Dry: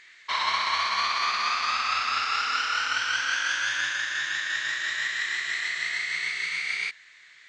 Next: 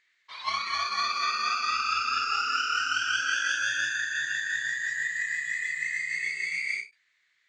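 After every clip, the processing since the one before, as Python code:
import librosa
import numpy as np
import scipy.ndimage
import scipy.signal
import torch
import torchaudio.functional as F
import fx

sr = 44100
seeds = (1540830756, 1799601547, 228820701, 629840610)

y = fx.noise_reduce_blind(x, sr, reduce_db=18)
y = fx.end_taper(y, sr, db_per_s=240.0)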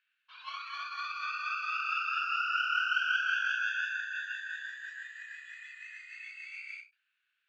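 y = fx.double_bandpass(x, sr, hz=2000.0, octaves=0.84)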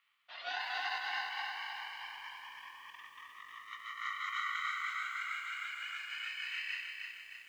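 y = fx.over_compress(x, sr, threshold_db=-40.0, ratio=-0.5)
y = y * np.sin(2.0 * np.pi * 370.0 * np.arange(len(y)) / sr)
y = fx.echo_crushed(y, sr, ms=309, feedback_pct=55, bits=11, wet_db=-4.5)
y = F.gain(torch.from_numpy(y), 1.0).numpy()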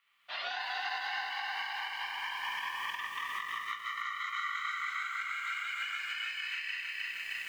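y = fx.recorder_agc(x, sr, target_db=-27.5, rise_db_per_s=30.0, max_gain_db=30)
y = fx.room_shoebox(y, sr, seeds[0], volume_m3=3300.0, walls='furnished', distance_m=1.2)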